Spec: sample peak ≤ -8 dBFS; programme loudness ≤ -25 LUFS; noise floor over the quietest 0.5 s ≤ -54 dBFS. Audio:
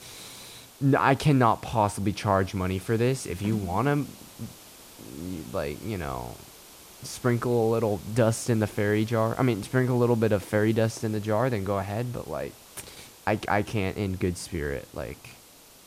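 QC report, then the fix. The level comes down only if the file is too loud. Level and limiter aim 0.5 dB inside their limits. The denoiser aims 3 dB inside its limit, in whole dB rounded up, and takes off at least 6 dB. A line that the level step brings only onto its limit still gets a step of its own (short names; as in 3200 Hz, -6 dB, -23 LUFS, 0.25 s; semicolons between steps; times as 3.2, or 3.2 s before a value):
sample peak -7.0 dBFS: fail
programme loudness -26.5 LUFS: OK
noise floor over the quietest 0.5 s -52 dBFS: fail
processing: denoiser 6 dB, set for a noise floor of -52 dBFS; limiter -8.5 dBFS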